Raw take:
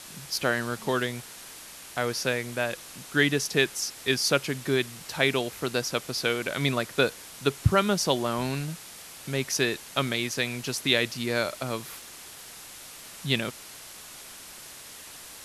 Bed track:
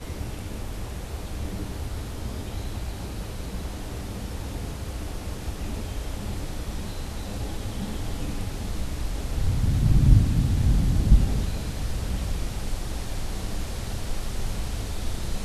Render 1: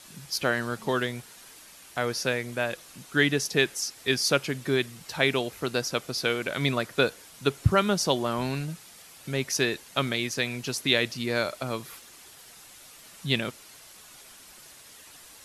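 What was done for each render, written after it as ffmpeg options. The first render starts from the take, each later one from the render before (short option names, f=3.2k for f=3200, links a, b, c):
-af "afftdn=nr=7:nf=-45"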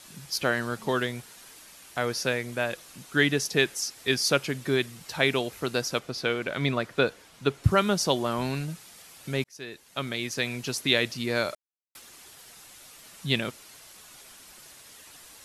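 -filter_complex "[0:a]asettb=1/sr,asplit=3[a][b][c];[a]atrim=end=5.994[d];[b]atrim=start=5.99:end=7.64,asetpts=PTS-STARTPTS,afade=t=in:d=0.004:c=qsin,afade=t=out:st=1.646:d=0.004:c=qsin,highshelf=f=5.8k:g=-11.5[e];[c]atrim=start=7.636[f];[d][e]acrossfade=d=0.004:c1=hsin:c2=qsin[g];[g][f]acrossfade=d=0.004:c1=qsin:c2=hsin,asplit=4[h][i][j][k];[h]atrim=end=9.44,asetpts=PTS-STARTPTS,afade=t=out:st=9.436:d=0.004:c=hsin[l];[i]atrim=start=9.44:end=11.55,asetpts=PTS-STARTPTS,afade=t=in:d=1.05,afade=t=out:st=2.106:d=0.004:c=hsin[m];[j]atrim=start=11.55:end=11.95,asetpts=PTS-STARTPTS,volume=0[n];[k]atrim=start=11.95,asetpts=PTS-STARTPTS,afade=t=in:d=0.004:c=hsin[o];[l][m][n][o]concat=n=4:v=0:a=1"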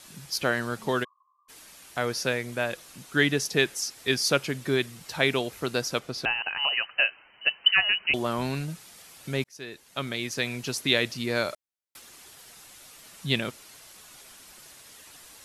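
-filter_complex "[0:a]asplit=3[a][b][c];[a]afade=t=out:st=1.03:d=0.02[d];[b]asuperpass=centerf=1100:order=20:qfactor=5.6,afade=t=in:st=1.03:d=0.02,afade=t=out:st=1.48:d=0.02[e];[c]afade=t=in:st=1.48:d=0.02[f];[d][e][f]amix=inputs=3:normalize=0,asettb=1/sr,asplit=3[g][h][i];[g]atrim=end=6.254[j];[h]atrim=start=6.25:end=8.14,asetpts=PTS-STARTPTS,afade=t=in:d=0.004:c=qsin,afade=t=out:st=1.886:d=0.004:c=qsin,lowpass=f=2.6k:t=q:w=0.5098,lowpass=f=2.6k:t=q:w=0.6013,lowpass=f=2.6k:t=q:w=0.9,lowpass=f=2.6k:t=q:w=2.563,afreqshift=-3100[k];[i]atrim=start=8.136[l];[j][k]acrossfade=d=0.004:c1=hsin:c2=qsin[m];[m][l]acrossfade=d=0.004:c1=qsin:c2=hsin"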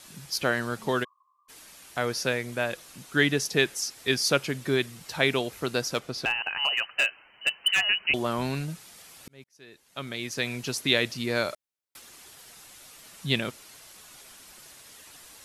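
-filter_complex "[0:a]asettb=1/sr,asplit=3[a][b][c];[a]atrim=end=5.914[d];[b]atrim=start=5.91:end=7.85,asetpts=PTS-STARTPTS,afade=t=in:d=0.004:c=qsin,afade=t=out:st=1.936:d=0.004:c=qsin,asoftclip=type=hard:threshold=-17.5dB[e];[c]atrim=start=7.846[f];[d][e]acrossfade=d=0.004:c1=hsin:c2=qsin[g];[g][f]acrossfade=d=0.004:c1=qsin:c2=hsin,asplit=2[h][i];[h]atrim=end=9.28,asetpts=PTS-STARTPTS,afade=t=out:st=9.276:d=0.004:c=hsin[j];[i]atrim=start=9.28,asetpts=PTS-STARTPTS,afade=t=in:d=1.22[k];[j][k]concat=n=2:v=0:a=1"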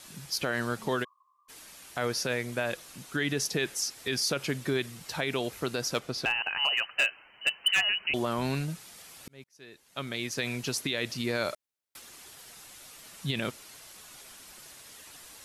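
-af "alimiter=limit=-19dB:level=0:latency=1:release=51"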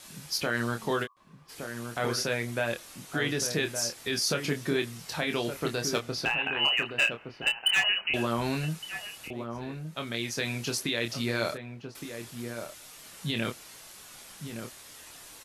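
-filter_complex "[0:a]asplit=2[a][b];[b]adelay=26,volume=-6dB[c];[a][c]amix=inputs=2:normalize=0,asplit=2[d][e];[e]adelay=1166,volume=-7dB,highshelf=f=4k:g=-26.2[f];[d][f]amix=inputs=2:normalize=0"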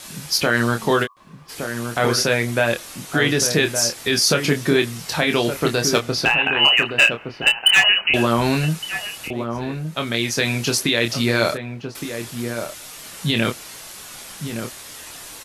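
-af "volume=11dB"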